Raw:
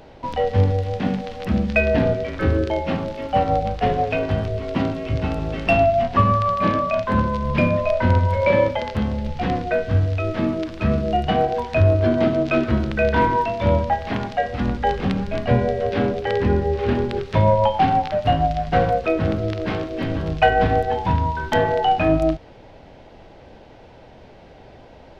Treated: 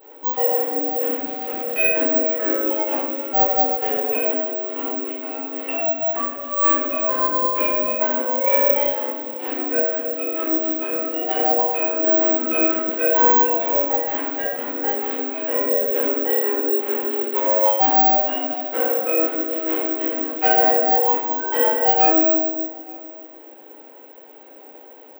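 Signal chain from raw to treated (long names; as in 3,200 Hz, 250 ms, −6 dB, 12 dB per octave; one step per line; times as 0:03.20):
high-shelf EQ 4,100 Hz −9.5 dB
notch filter 710 Hz, Q 12
0:04.28–0:06.56: downward compressor, threshold −22 dBFS, peak gain reduction 10.5 dB
soft clipping −9.5 dBFS, distortion −21 dB
linear-phase brick-wall high-pass 250 Hz
slap from a distant wall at 150 metres, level −24 dB
rectangular room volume 570 cubic metres, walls mixed, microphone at 4.3 metres
bad sample-rate conversion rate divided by 2×, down none, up zero stuff
level −9.5 dB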